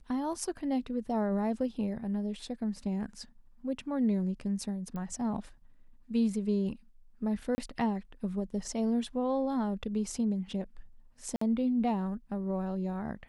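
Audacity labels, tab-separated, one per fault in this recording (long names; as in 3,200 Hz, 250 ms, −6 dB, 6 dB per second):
4.960000	4.960000	click −28 dBFS
7.550000	7.580000	drop-out 30 ms
11.360000	11.410000	drop-out 54 ms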